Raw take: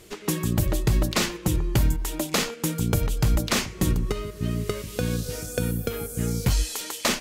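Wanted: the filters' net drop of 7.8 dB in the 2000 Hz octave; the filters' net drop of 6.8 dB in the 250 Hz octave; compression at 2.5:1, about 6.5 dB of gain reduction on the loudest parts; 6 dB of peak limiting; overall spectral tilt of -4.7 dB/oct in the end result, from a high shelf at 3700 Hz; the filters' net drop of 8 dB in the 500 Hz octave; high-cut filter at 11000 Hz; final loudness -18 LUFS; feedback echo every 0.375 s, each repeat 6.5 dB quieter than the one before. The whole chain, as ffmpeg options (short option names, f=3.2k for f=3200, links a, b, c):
-af "lowpass=11k,equalizer=f=250:t=o:g=-9,equalizer=f=500:t=o:g=-6.5,equalizer=f=2k:t=o:g=-8,highshelf=f=3.7k:g=-6,acompressor=threshold=-28dB:ratio=2.5,alimiter=limit=-24dB:level=0:latency=1,aecho=1:1:375|750|1125|1500|1875|2250:0.473|0.222|0.105|0.0491|0.0231|0.0109,volume=16dB"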